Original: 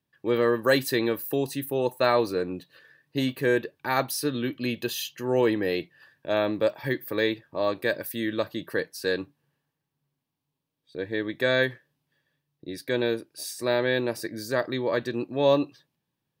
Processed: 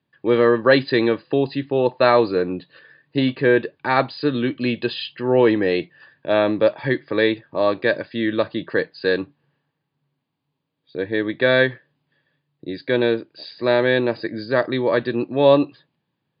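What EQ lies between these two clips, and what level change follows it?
HPF 95 Hz; brick-wall FIR low-pass 5000 Hz; air absorption 110 m; +7.5 dB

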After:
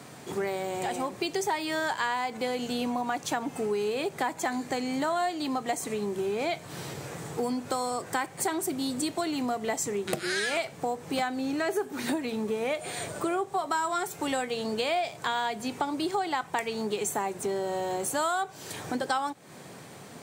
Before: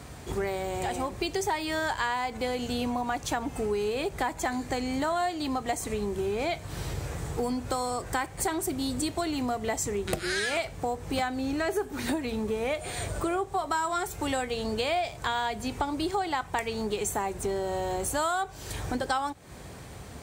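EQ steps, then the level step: HPF 140 Hz 24 dB/oct; 0.0 dB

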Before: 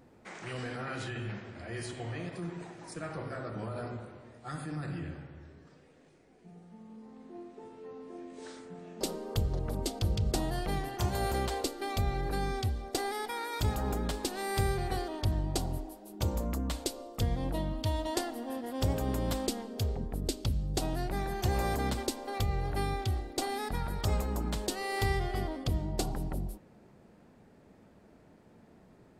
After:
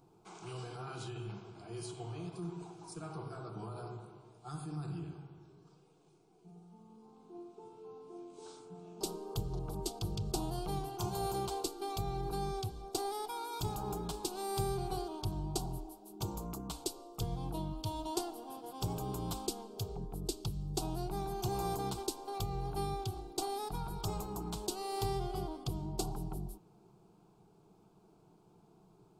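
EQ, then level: fixed phaser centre 370 Hz, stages 8; -2.0 dB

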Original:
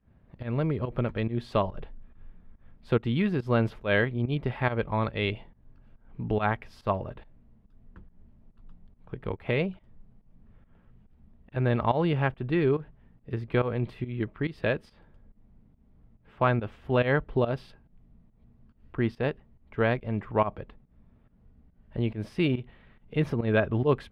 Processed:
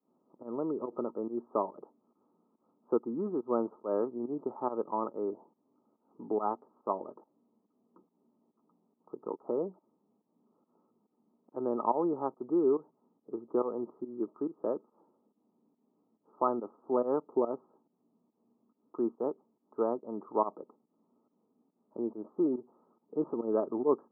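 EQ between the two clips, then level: HPF 260 Hz 24 dB/oct; rippled Chebyshev low-pass 1300 Hz, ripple 6 dB; 0.0 dB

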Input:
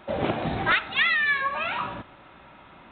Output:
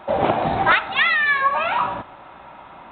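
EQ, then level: bell 840 Hz +10 dB 1.3 oct; +2.0 dB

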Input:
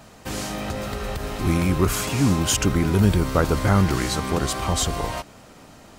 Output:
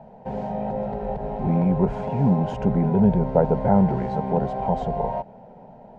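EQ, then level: synth low-pass 930 Hz, resonance Q 4.4; bell 210 Hz +3.5 dB 2.3 oct; fixed phaser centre 310 Hz, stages 6; 0.0 dB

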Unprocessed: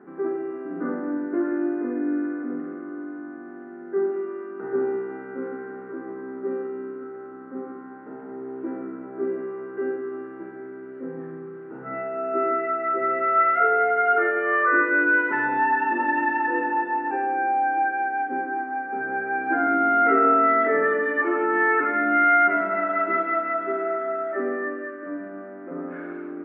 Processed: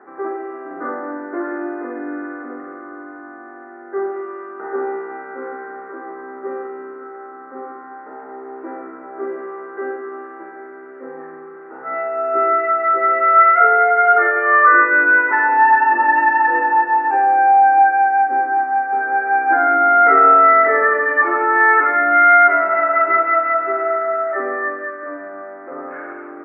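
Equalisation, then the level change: speaker cabinet 440–2500 Hz, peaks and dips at 570 Hz +3 dB, 810 Hz +7 dB, 1200 Hz +6 dB, 1900 Hz +5 dB; +4.5 dB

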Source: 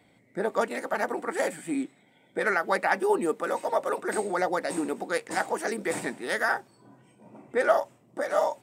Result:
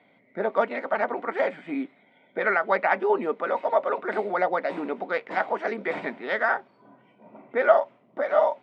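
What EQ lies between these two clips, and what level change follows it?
speaker cabinet 310–2800 Hz, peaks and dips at 330 Hz -10 dB, 480 Hz -6 dB, 820 Hz -6 dB, 1200 Hz -4 dB, 1700 Hz -8 dB, 2700 Hz -6 dB; +8.0 dB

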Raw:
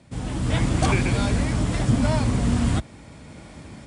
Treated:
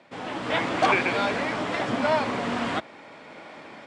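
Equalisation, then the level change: BPF 490–3000 Hz; +6.0 dB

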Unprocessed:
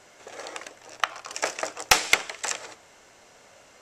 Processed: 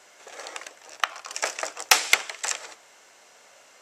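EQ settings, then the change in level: HPF 630 Hz 6 dB/oct; high shelf 11000 Hz +4 dB; +1.0 dB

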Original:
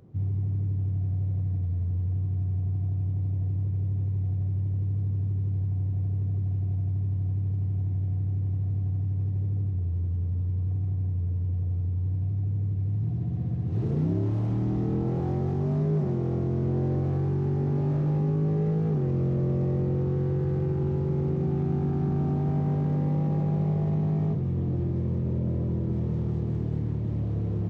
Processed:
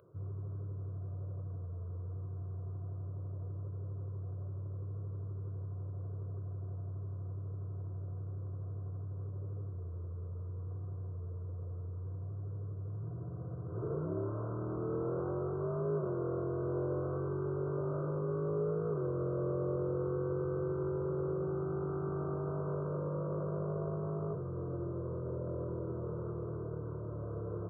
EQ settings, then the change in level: HPF 780 Hz 6 dB/oct; brick-wall FIR low-pass 1600 Hz; fixed phaser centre 1200 Hz, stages 8; +6.5 dB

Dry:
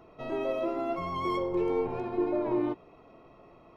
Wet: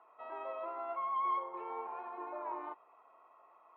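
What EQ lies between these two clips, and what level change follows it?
ladder band-pass 1200 Hz, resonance 45%; air absorption 170 m; +7.0 dB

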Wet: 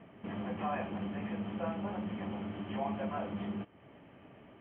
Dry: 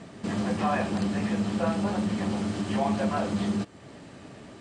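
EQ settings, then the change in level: rippled Chebyshev low-pass 3200 Hz, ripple 3 dB; -8.0 dB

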